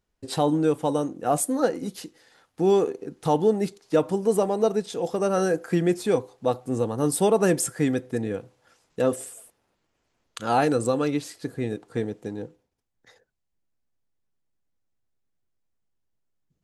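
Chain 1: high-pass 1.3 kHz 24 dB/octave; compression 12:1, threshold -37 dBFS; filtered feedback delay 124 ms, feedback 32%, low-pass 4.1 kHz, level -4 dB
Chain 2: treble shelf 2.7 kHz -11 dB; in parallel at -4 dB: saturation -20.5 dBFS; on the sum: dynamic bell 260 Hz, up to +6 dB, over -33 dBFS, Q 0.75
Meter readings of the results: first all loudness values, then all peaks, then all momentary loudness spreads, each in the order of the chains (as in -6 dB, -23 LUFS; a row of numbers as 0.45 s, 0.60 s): -42.0 LUFS, -18.5 LUFS; -18.5 dBFS, -4.0 dBFS; 13 LU, 10 LU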